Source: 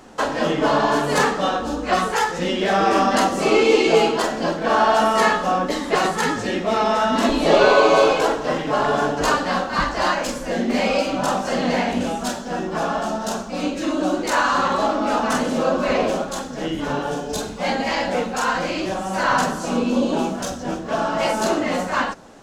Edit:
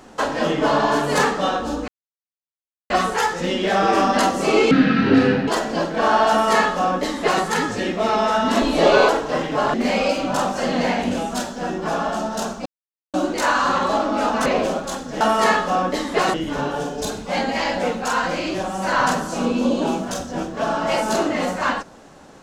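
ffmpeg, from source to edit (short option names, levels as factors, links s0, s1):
-filter_complex "[0:a]asplit=11[s0][s1][s2][s3][s4][s5][s6][s7][s8][s9][s10];[s0]atrim=end=1.88,asetpts=PTS-STARTPTS,afade=t=out:st=1.876:d=0.004:c=hsin,apad=pad_dur=1.02[s11];[s1]atrim=start=1.88:end=3.694,asetpts=PTS-STARTPTS,afade=t=in:d=0.004:c=hsin[s12];[s2]atrim=start=3.69:end=4.15,asetpts=PTS-STARTPTS,asetrate=26460,aresample=44100[s13];[s3]atrim=start=4.146:end=7.762[s14];[s4]atrim=start=8.238:end=8.892[s15];[s5]atrim=start=10.628:end=13.55,asetpts=PTS-STARTPTS,afade=t=out:st=2.918:d=0.004:c=hsin[s16];[s6]atrim=start=13.55:end=14.03,asetpts=PTS-STARTPTS,volume=0[s17];[s7]atrim=start=14.03:end=15.352,asetpts=PTS-STARTPTS,afade=t=in:d=0.004:c=hsin[s18];[s8]atrim=start=15.898:end=16.652[s19];[s9]atrim=start=4.968:end=6.102[s20];[s10]atrim=start=16.648[s21];[s11][s12]concat=n=2:v=0:a=1[s22];[s22][s13]acrossfade=d=0.004:c1=hsin:c2=hsin[s23];[s23][s14]acrossfade=d=0.004:c1=hsin:c2=hsin[s24];[s24][s15]acrossfade=d=0.004:c1=hsin:c2=hsin[s25];[s16][s17][s18]concat=n=3:v=0:a=1[s26];[s25][s26]acrossfade=d=0.004:c1=hsin:c2=hsin[s27];[s27][s19]acrossfade=d=0.004:c1=hsin:c2=hsin[s28];[s28][s20]acrossfade=d=0.004:c1=hsin:c2=hsin[s29];[s29][s21]acrossfade=d=0.004:c1=hsin:c2=hsin"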